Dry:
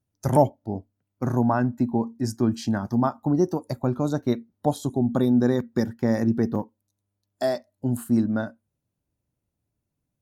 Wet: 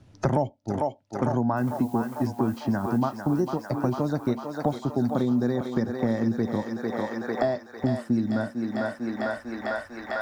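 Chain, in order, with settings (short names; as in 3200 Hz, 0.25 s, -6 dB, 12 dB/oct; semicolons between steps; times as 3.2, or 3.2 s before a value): LPF 4600 Hz 12 dB/oct; 1.56–2.97 added noise blue -52 dBFS; thinning echo 0.449 s, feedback 81%, high-pass 530 Hz, level -6 dB; three-band squash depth 100%; gain -3 dB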